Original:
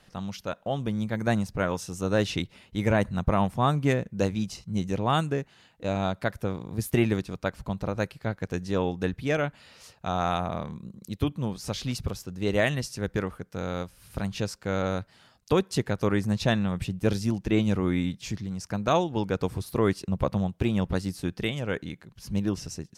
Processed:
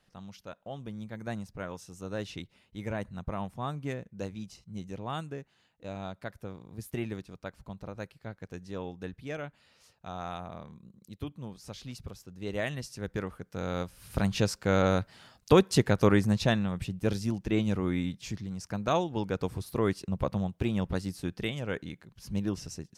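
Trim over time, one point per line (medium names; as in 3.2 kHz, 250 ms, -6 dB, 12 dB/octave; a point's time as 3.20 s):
12.08 s -11.5 dB
13.38 s -4.5 dB
14.20 s +3 dB
16.06 s +3 dB
16.70 s -4 dB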